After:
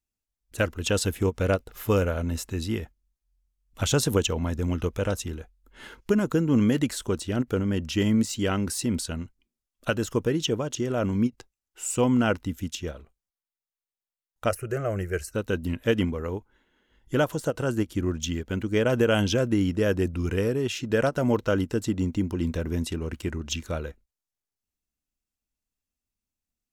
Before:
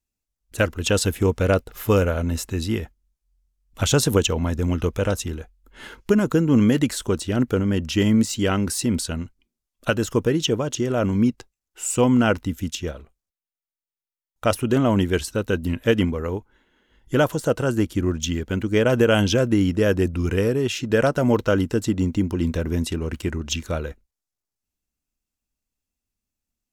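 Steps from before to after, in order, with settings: 14.49–15.34 s: static phaser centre 940 Hz, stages 6; endings held to a fixed fall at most 570 dB/s; trim -4.5 dB

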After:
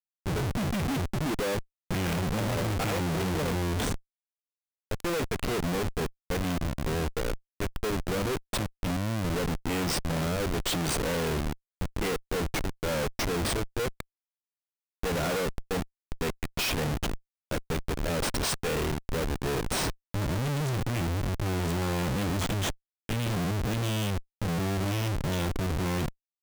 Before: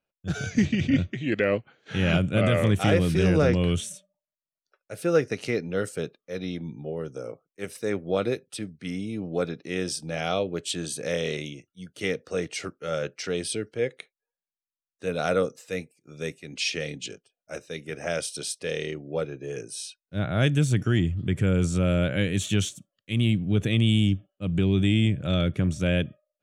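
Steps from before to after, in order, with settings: rotary cabinet horn 0.9 Hz; Schmitt trigger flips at -35 dBFS

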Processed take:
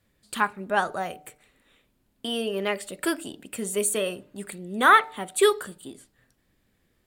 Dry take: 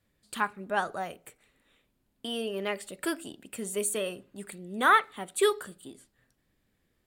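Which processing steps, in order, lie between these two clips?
de-hum 149.7 Hz, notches 6; trim +5 dB

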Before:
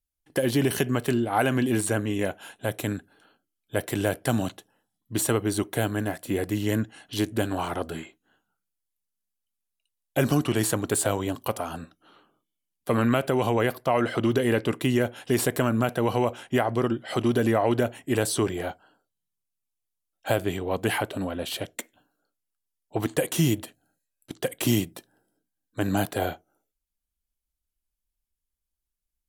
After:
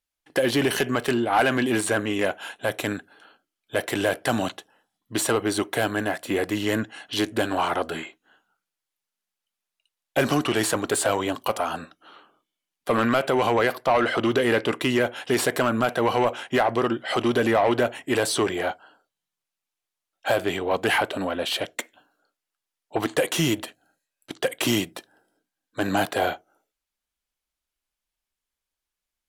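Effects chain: treble shelf 6.1 kHz -5.5 dB; overdrive pedal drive 18 dB, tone 5.8 kHz, clips at -6 dBFS; trim -3 dB

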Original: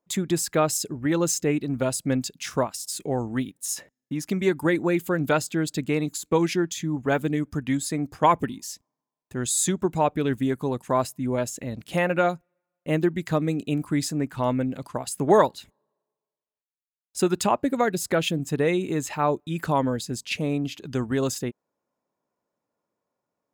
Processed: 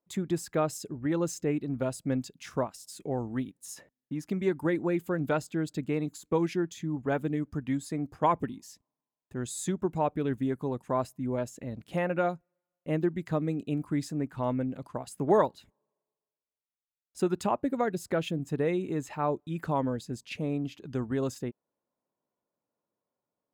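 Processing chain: treble shelf 2.1 kHz -9.5 dB; trim -5 dB

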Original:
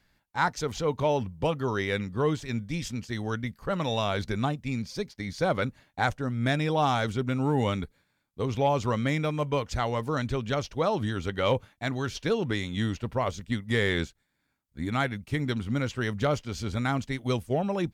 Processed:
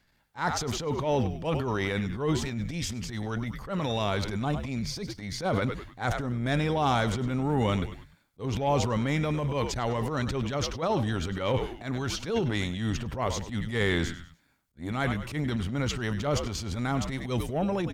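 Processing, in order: frequency-shifting echo 99 ms, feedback 38%, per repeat -81 Hz, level -16 dB; transient shaper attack -12 dB, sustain +8 dB

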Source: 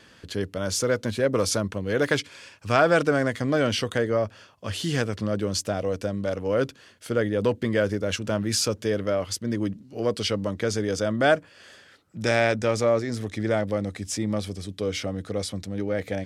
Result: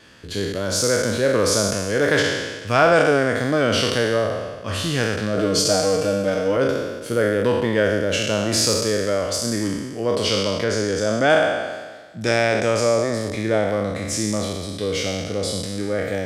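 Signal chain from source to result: spectral sustain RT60 1.43 s; 5.37–6.57 s: comb 6.5 ms, depth 97%; 10.64–11.30 s: treble shelf 6.6 kHz -7 dB; trim +1.5 dB

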